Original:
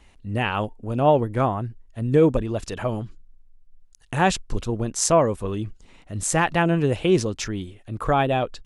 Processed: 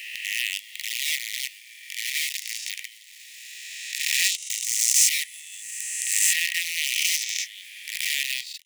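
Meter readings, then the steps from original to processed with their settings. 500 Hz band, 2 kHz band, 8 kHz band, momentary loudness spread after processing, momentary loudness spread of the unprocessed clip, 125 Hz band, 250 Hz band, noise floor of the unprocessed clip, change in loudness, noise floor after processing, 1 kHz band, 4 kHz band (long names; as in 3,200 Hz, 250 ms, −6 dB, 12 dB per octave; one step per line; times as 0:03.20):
below −40 dB, +3.5 dB, +8.5 dB, 17 LU, 13 LU, below −40 dB, below −40 dB, −53 dBFS, −1.0 dB, −47 dBFS, below −40 dB, +10.0 dB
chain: peak hold with a rise ahead of every peak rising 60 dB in 2.16 s
in parallel at −6.5 dB: log-companded quantiser 2 bits
on the sum: Chebyshev high-pass filter 1,900 Hz, order 8
level −4 dB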